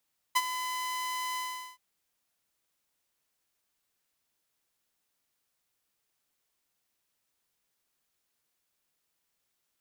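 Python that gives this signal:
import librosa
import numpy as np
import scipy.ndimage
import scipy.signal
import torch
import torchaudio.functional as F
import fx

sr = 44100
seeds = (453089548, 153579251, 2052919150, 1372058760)

y = fx.adsr_tone(sr, wave='saw', hz=1010.0, attack_ms=15.0, decay_ms=43.0, sustain_db=-11.5, held_s=1.02, release_ms=405.0, level_db=-18.0)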